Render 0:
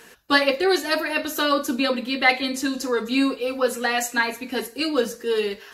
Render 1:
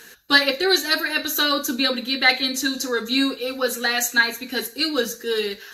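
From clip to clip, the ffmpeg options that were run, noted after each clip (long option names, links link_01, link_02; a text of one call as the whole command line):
ffmpeg -i in.wav -af "equalizer=frequency=630:width_type=o:width=0.33:gain=-5,equalizer=frequency=1000:width_type=o:width=0.33:gain=-5,equalizer=frequency=1600:width_type=o:width=0.33:gain=7,equalizer=frequency=4000:width_type=o:width=0.33:gain=10,equalizer=frequency=6300:width_type=o:width=0.33:gain=8,equalizer=frequency=12500:width_type=o:width=0.33:gain=11,volume=-1dB" out.wav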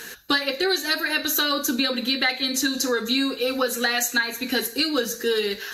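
ffmpeg -i in.wav -af "acompressor=threshold=-27dB:ratio=6,volume=7dB" out.wav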